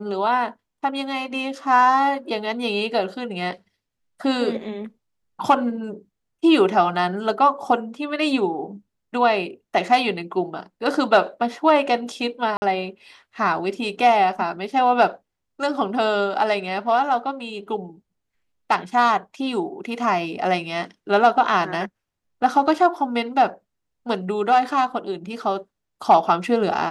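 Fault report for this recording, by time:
12.57–12.62 gap 50 ms

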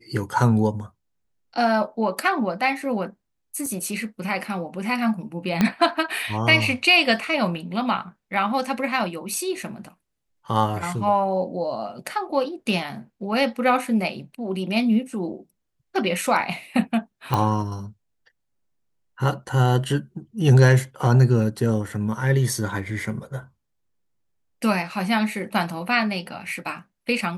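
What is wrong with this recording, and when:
3.66 gap 2.7 ms
5.61 pop -6 dBFS
17.34 pop -10 dBFS

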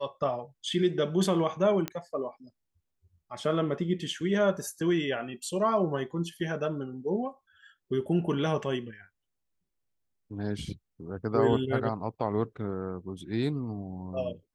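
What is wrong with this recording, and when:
1.88 pop -16 dBFS

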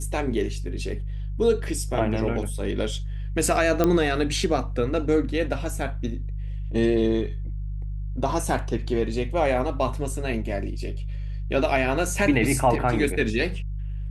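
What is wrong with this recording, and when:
hum 50 Hz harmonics 3 -30 dBFS
3.84 pop -8 dBFS

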